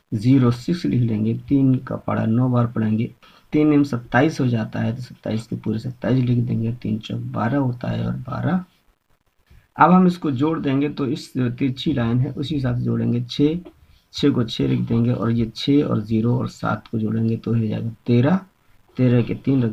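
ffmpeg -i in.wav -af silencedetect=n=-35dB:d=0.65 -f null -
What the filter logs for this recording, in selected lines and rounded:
silence_start: 8.63
silence_end: 9.76 | silence_duration: 1.13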